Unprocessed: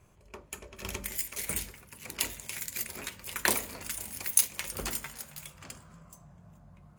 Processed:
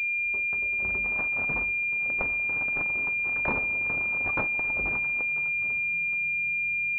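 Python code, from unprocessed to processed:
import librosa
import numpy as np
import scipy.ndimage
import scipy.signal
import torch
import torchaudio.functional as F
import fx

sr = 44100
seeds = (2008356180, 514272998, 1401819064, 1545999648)

y = fx.pwm(x, sr, carrier_hz=2400.0)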